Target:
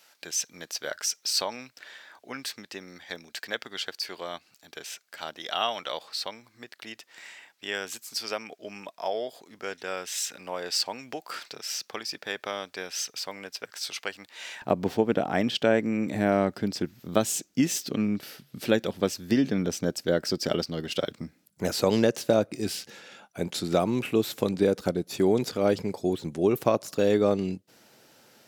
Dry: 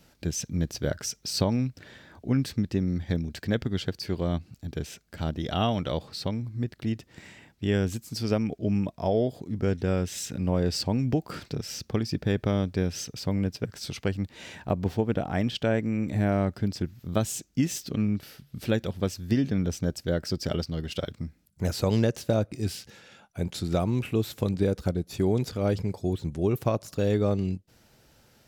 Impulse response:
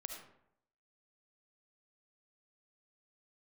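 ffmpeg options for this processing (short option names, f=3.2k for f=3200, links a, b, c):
-af "asetnsamples=n=441:p=0,asendcmd='14.62 highpass f 240',highpass=890,volume=4.5dB"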